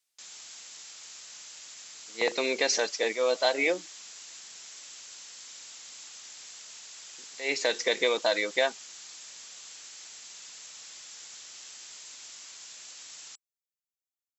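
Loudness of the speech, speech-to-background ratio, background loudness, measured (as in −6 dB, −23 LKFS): −27.5 LKFS, 16.0 dB, −43.5 LKFS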